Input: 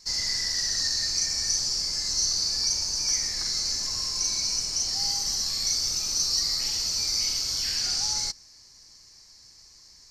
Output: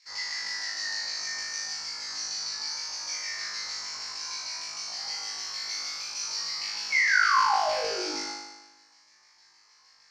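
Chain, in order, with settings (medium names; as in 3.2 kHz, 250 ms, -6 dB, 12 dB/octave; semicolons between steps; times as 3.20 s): painted sound fall, 6.90–8.16 s, 270–2300 Hz -27 dBFS; LFO band-pass saw down 6.5 Hz 830–2600 Hz; flutter echo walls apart 3.3 m, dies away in 1.1 s; trim +2 dB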